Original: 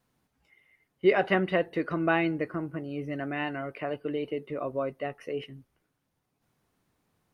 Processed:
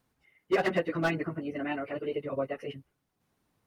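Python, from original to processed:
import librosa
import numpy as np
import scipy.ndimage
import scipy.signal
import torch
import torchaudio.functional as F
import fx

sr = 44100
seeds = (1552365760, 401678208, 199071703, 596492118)

y = 10.0 ** (-15.5 / 20.0) * (np.abs((x / 10.0 ** (-15.5 / 20.0) + 3.0) % 4.0 - 2.0) - 1.0)
y = fx.stretch_vocoder_free(y, sr, factor=0.5)
y = F.gain(torch.from_numpy(y), 2.0).numpy()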